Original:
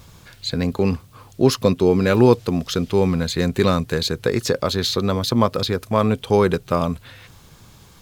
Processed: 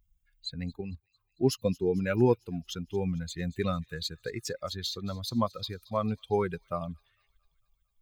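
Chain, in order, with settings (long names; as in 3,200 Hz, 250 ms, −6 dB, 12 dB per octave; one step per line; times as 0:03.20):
spectral dynamics exaggerated over time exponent 2
delay with a high-pass on its return 225 ms, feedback 60%, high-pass 3,300 Hz, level −19 dB
0:00.81–0:01.41: output level in coarse steps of 10 dB
level −7.5 dB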